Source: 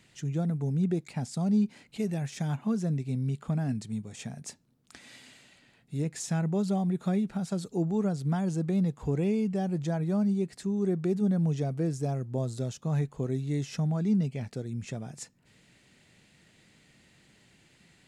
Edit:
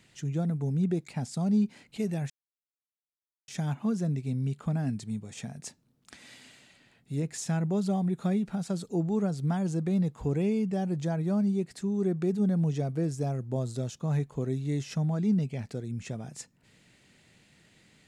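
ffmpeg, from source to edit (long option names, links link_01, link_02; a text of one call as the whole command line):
ffmpeg -i in.wav -filter_complex "[0:a]asplit=2[link_01][link_02];[link_01]atrim=end=2.3,asetpts=PTS-STARTPTS,afade=type=out:start_time=2.296:duration=0.004:curve=hsin,apad=pad_dur=1.18[link_03];[link_02]atrim=start=2.3,asetpts=PTS-STARTPTS,afade=type=in:duration=0.004:curve=hsin[link_04];[link_03][link_04]concat=n=2:v=0:a=1" out.wav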